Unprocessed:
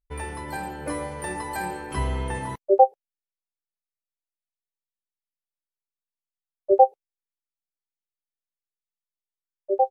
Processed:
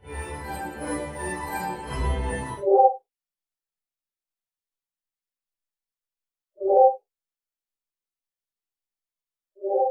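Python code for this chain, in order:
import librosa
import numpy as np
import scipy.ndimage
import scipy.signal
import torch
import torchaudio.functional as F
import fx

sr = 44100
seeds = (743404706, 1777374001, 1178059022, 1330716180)

y = fx.phase_scramble(x, sr, seeds[0], window_ms=200)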